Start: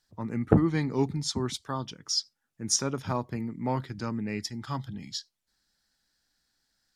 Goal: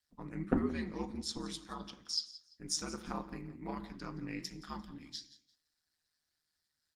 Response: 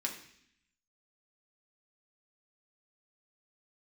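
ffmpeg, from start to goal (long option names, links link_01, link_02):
-filter_complex "[0:a]equalizer=frequency=430:width=0.7:gain=-5.5,aeval=exprs='val(0)*sin(2*PI*78*n/s)':channel_layout=same,asplit=2[link_01][link_02];[1:a]atrim=start_sample=2205,afade=type=out:start_time=0.28:duration=0.01,atrim=end_sample=12789[link_03];[link_02][link_03]afir=irnorm=-1:irlink=0,volume=-3.5dB[link_04];[link_01][link_04]amix=inputs=2:normalize=0,asettb=1/sr,asplit=3[link_05][link_06][link_07];[link_05]atrim=end=2.634[link_08];[link_06]atrim=start=2.63:end=3.56,asetpts=PTS-STARTPTS,afade=type=in:duration=0.004:curve=qsin,afade=type=out:start_time=0.926:duration=0.004:curve=qsin,aeval=exprs='val(0)+0.001*(sin(2*PI*60*n/s)+sin(2*PI*2*60*n/s)/2+sin(2*PI*3*60*n/s)/3+sin(2*PI*4*60*n/s)/4+sin(2*PI*5*60*n/s)/5)':channel_layout=same[link_09];[link_07]atrim=start=3.556[link_10];[link_08][link_09]acrossfade=duration=0.004:curve1=hsin:curve2=qsin[link_11];[link_11][link_10]acrossfade=duration=0.004:curve1=qsin:curve2=hsin,flanger=delay=2.5:depth=4.4:regen=81:speed=1.5:shape=sinusoidal,aecho=1:1:172|344:0.141|0.0367,volume=-3dB" -ar 48000 -c:a libopus -b:a 24k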